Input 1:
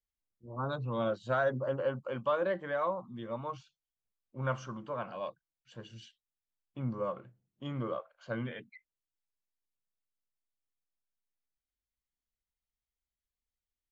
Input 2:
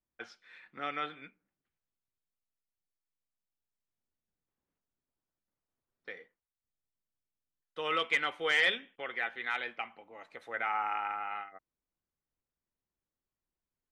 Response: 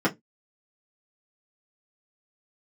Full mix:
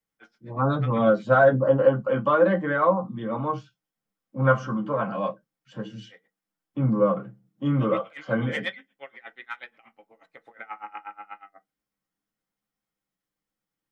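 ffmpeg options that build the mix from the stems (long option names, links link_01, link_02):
-filter_complex "[0:a]volume=0dB,asplit=2[link_01][link_02];[link_02]volume=-5dB[link_03];[1:a]aeval=exprs='val(0)*pow(10,-28*(0.5-0.5*cos(2*PI*8.3*n/s))/20)':channel_layout=same,volume=-1.5dB,asplit=2[link_04][link_05];[link_05]volume=-19.5dB[link_06];[2:a]atrim=start_sample=2205[link_07];[link_03][link_06]amix=inputs=2:normalize=0[link_08];[link_08][link_07]afir=irnorm=-1:irlink=0[link_09];[link_01][link_04][link_09]amix=inputs=3:normalize=0,equalizer=frequency=380:width_type=o:width=0.34:gain=-6"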